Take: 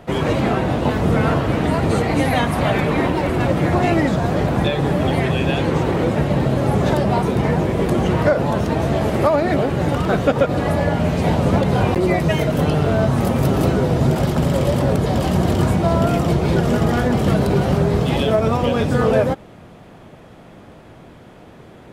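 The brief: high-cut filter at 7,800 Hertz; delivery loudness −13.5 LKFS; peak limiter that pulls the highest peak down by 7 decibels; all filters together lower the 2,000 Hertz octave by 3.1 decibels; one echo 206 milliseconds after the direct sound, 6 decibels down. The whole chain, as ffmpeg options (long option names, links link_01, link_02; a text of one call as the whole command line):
ffmpeg -i in.wav -af "lowpass=7800,equalizer=frequency=2000:width_type=o:gain=-4,alimiter=limit=-10.5dB:level=0:latency=1,aecho=1:1:206:0.501,volume=5.5dB" out.wav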